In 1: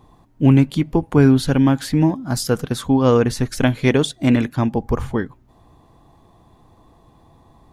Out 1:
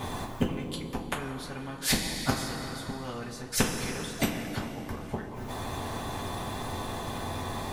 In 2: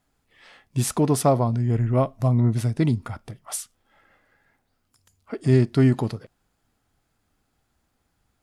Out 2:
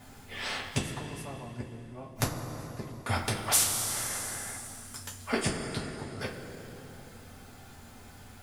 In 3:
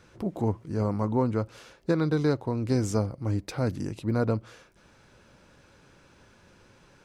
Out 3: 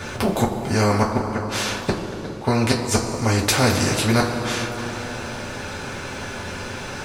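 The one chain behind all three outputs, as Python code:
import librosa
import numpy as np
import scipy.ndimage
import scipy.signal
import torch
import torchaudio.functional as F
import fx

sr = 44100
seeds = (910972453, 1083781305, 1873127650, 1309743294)

y = fx.gate_flip(x, sr, shuts_db=-17.0, range_db=-40)
y = fx.rev_double_slope(y, sr, seeds[0], early_s=0.2, late_s=2.9, knee_db=-20, drr_db=-4.0)
y = fx.spectral_comp(y, sr, ratio=2.0)
y = y * 10.0 ** (4.0 / 20.0)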